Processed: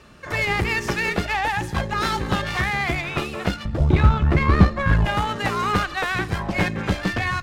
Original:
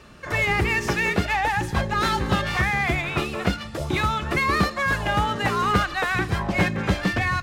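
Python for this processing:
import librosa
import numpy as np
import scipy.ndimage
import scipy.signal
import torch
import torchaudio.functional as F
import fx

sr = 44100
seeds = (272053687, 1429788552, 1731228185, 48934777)

y = fx.riaa(x, sr, side='playback', at=(3.65, 5.05))
y = fx.cheby_harmonics(y, sr, harmonics=(8,), levels_db=(-23,), full_scale_db=-1.0)
y = y * librosa.db_to_amplitude(-1.0)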